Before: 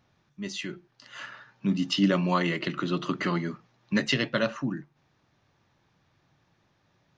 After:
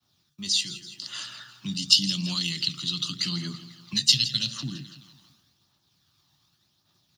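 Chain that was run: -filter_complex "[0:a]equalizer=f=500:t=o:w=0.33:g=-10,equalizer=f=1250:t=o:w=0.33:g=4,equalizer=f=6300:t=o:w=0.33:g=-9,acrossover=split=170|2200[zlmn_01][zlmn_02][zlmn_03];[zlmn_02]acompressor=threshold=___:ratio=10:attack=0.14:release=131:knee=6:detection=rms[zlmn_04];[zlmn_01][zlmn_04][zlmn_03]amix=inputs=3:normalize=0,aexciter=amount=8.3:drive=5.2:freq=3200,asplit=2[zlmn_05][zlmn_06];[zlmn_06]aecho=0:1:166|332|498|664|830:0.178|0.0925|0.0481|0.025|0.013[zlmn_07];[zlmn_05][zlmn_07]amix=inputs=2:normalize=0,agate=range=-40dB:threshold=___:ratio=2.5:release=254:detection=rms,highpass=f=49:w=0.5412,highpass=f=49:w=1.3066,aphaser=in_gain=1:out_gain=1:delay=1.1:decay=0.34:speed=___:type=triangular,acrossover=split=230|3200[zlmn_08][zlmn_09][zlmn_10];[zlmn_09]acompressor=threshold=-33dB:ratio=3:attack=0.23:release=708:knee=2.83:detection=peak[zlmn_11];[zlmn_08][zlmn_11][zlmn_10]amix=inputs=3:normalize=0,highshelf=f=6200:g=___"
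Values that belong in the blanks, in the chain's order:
-40dB, -56dB, 0.87, 2.5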